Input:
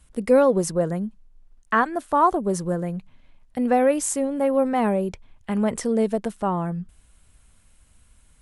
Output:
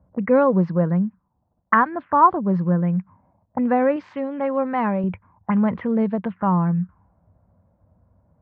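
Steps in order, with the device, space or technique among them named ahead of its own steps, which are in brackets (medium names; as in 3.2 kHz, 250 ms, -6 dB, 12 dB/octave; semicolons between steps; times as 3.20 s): envelope filter bass rig (touch-sensitive low-pass 600–4600 Hz up, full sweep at -20.5 dBFS; cabinet simulation 68–2000 Hz, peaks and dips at 99 Hz +8 dB, 180 Hz +8 dB, 410 Hz -6 dB, 680 Hz -4 dB, 1 kHz +5 dB); 3.96–5.04 s: tilt EQ +2 dB/octave; trim +1 dB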